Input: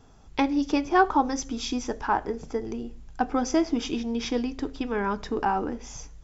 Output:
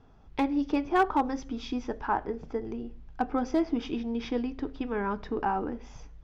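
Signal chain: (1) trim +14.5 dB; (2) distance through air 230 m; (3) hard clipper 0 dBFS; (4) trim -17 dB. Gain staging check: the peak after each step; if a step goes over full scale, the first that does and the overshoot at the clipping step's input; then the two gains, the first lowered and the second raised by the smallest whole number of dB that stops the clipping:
+5.5 dBFS, +4.5 dBFS, 0.0 dBFS, -17.0 dBFS; step 1, 4.5 dB; step 1 +9.5 dB, step 4 -12 dB

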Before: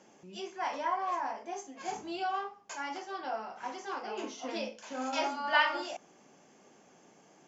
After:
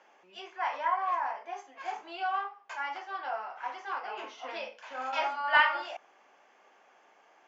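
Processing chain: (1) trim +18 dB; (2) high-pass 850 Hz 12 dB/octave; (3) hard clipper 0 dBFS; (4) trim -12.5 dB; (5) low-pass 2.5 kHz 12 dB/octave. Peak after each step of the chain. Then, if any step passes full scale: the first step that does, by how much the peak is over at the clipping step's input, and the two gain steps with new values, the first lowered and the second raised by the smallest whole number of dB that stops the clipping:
+6.5 dBFS, +4.5 dBFS, 0.0 dBFS, -12.5 dBFS, -12.0 dBFS; step 1, 4.5 dB; step 1 +13 dB, step 4 -7.5 dB

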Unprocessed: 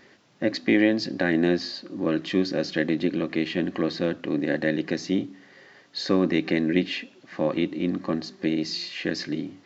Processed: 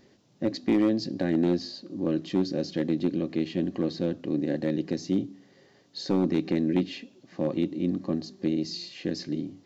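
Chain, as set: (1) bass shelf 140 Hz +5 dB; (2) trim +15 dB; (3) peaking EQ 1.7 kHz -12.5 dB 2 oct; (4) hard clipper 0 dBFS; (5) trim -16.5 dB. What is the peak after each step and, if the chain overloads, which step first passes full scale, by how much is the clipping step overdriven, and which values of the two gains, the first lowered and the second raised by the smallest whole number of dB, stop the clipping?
-7.0 dBFS, +8.0 dBFS, +5.5 dBFS, 0.0 dBFS, -16.5 dBFS; step 2, 5.5 dB; step 2 +9 dB, step 5 -10.5 dB

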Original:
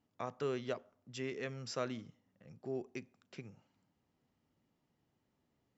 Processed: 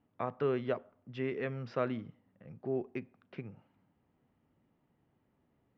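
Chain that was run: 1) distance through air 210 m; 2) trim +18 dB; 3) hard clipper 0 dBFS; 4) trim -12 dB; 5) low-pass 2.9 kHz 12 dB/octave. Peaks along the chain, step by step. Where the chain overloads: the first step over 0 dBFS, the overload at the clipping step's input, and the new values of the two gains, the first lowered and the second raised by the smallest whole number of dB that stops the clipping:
-24.0 dBFS, -6.0 dBFS, -6.0 dBFS, -18.0 dBFS, -18.0 dBFS; nothing clips

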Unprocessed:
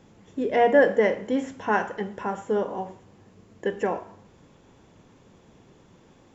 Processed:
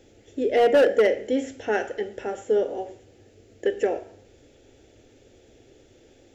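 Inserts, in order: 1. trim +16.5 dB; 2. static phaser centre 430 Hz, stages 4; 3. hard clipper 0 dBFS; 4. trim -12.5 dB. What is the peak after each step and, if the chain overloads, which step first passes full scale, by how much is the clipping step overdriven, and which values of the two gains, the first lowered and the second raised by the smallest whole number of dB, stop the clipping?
+10.0 dBFS, +8.0 dBFS, 0.0 dBFS, -12.5 dBFS; step 1, 8.0 dB; step 1 +8.5 dB, step 4 -4.5 dB

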